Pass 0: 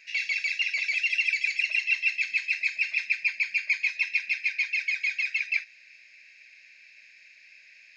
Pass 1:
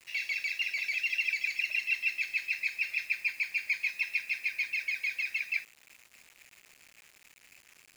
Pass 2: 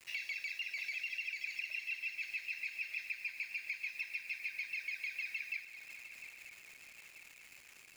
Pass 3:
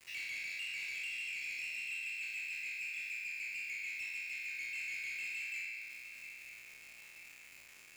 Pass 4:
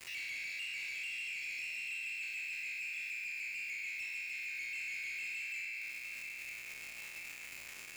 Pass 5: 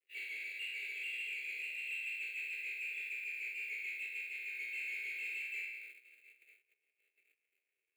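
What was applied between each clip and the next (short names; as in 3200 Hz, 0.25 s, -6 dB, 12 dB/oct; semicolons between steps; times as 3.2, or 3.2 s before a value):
requantised 8-bit, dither none; gain -5 dB
compressor, threshold -37 dBFS, peak gain reduction 12 dB; swung echo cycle 0.935 s, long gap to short 3:1, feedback 49%, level -12.5 dB; gain -1 dB
spectral trails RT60 1.52 s; soft clip -33.5 dBFS, distortion -14 dB; dynamic EQ 800 Hz, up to -5 dB, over -59 dBFS, Q 1.1; gain -2.5 dB
limiter -46.5 dBFS, peak gain reduction 11 dB; gain +10 dB
gate -41 dBFS, range -43 dB; resonant high-pass 420 Hz, resonance Q 4.9; fixed phaser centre 2400 Hz, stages 4; gain +4 dB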